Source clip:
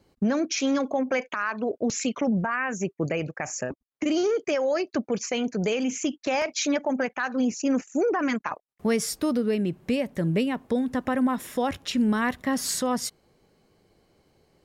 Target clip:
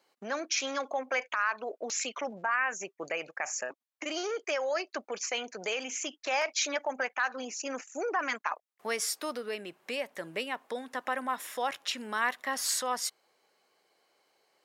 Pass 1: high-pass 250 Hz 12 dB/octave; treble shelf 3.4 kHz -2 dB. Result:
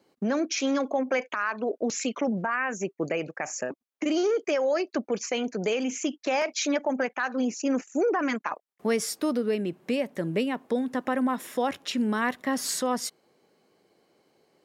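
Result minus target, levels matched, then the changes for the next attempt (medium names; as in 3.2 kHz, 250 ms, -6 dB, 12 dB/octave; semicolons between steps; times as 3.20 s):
250 Hz band +11.0 dB
change: high-pass 780 Hz 12 dB/octave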